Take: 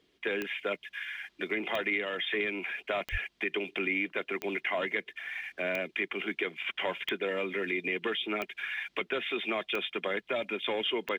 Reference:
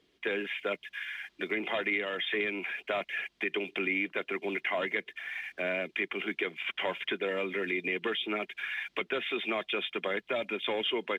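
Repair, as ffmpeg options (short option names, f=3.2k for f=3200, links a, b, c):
-filter_complex "[0:a]adeclick=t=4,asplit=3[a][b][c];[a]afade=t=out:st=3.11:d=0.02[d];[b]highpass=f=140:w=0.5412,highpass=f=140:w=1.3066,afade=t=in:st=3.11:d=0.02,afade=t=out:st=3.23:d=0.02[e];[c]afade=t=in:st=3.23:d=0.02[f];[d][e][f]amix=inputs=3:normalize=0"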